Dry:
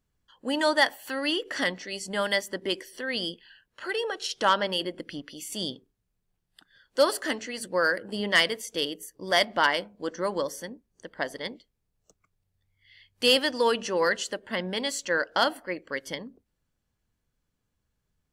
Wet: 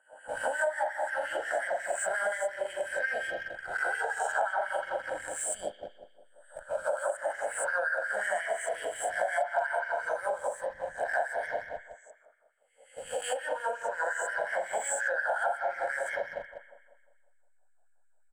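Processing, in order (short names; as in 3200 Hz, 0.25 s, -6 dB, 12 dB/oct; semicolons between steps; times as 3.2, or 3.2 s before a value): spectral swells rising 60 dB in 0.77 s; reverb RT60 1.5 s, pre-delay 39 ms, DRR 0 dB; LFO high-pass sine 5.6 Hz 670–2000 Hz; EQ curve 250 Hz 0 dB, 410 Hz +7 dB, 700 Hz +7 dB, 1100 Hz -7 dB, 1600 Hz 0 dB, 2500 Hz -16 dB, 5000 Hz -30 dB, 8200 Hz +12 dB, 13000 Hz -24 dB; added harmonics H 5 -35 dB, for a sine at 0 dBFS; in parallel at -3 dB: backlash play -31 dBFS; on the sum: compressor 12:1, threshold -24 dBFS, peak gain reduction 23 dB; comb 1.3 ms, depth 64%; gain -5.5 dB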